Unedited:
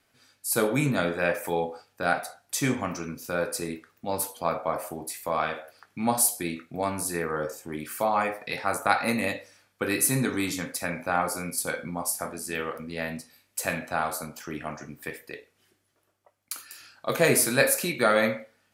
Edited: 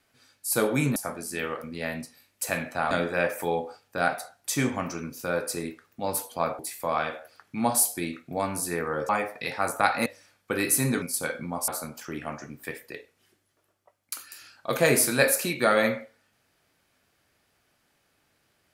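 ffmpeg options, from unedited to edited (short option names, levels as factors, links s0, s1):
-filter_complex "[0:a]asplit=8[s0][s1][s2][s3][s4][s5][s6][s7];[s0]atrim=end=0.962[s8];[s1]atrim=start=12.118:end=14.072[s9];[s2]atrim=start=0.958:end=4.642[s10];[s3]atrim=start=5.018:end=7.522[s11];[s4]atrim=start=8.148:end=9.122[s12];[s5]atrim=start=9.368:end=10.332[s13];[s6]atrim=start=11.458:end=12.122[s14];[s7]atrim=start=14.068[s15];[s8][s9]acrossfade=d=0.004:c1=hsin:c2=hsin[s16];[s16][s10]acrossfade=d=0.004:c1=hsin:c2=hsin[s17];[s17][s11]acrossfade=d=0.004:c1=hsin:c2=hsin[s18];[s18][s12]acrossfade=d=0.004:c1=hsin:c2=hsin[s19];[s19][s13]acrossfade=d=0.004:c1=hsin:c2=hsin[s20];[s20][s14]acrossfade=d=0.004:c1=hsin:c2=hsin[s21];[s21][s15]acrossfade=d=0.004:c1=hsin:c2=hsin"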